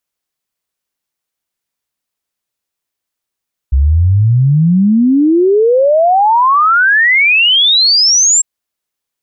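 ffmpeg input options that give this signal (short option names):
-f lavfi -i "aevalsrc='0.501*clip(min(t,4.7-t)/0.01,0,1)*sin(2*PI*64*4.7/log(7600/64)*(exp(log(7600/64)*t/4.7)-1))':d=4.7:s=44100"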